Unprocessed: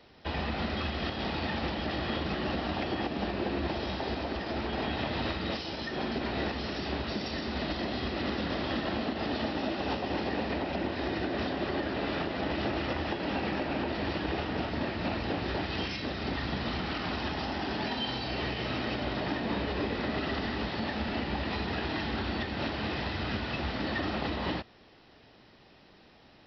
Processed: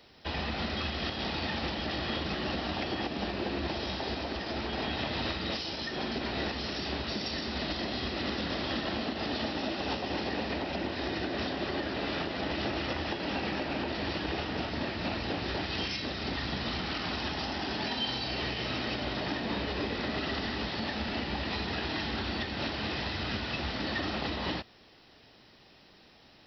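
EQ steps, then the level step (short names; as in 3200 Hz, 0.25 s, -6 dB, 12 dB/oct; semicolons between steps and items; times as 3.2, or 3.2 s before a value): high shelf 4000 Hz +11 dB; -2.0 dB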